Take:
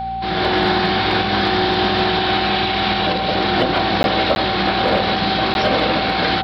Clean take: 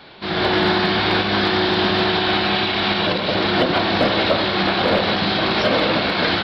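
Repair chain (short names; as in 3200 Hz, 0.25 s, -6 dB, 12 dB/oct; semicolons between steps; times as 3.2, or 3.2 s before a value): de-hum 58.5 Hz, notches 4; notch 770 Hz, Q 30; interpolate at 4.03/4.35/5.54, 11 ms; inverse comb 0.863 s -21 dB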